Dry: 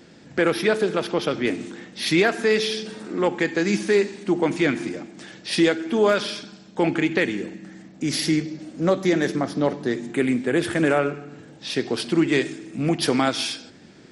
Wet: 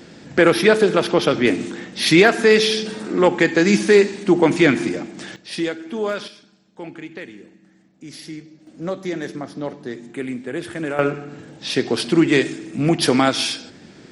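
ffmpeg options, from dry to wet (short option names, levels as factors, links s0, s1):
-af "asetnsamples=n=441:p=0,asendcmd='5.36 volume volume -5dB;6.28 volume volume -13dB;8.67 volume volume -6dB;10.99 volume volume 4.5dB',volume=2.11"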